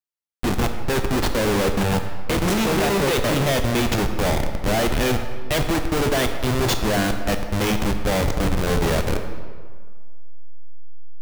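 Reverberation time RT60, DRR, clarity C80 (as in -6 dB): 1.8 s, 6.0 dB, 8.5 dB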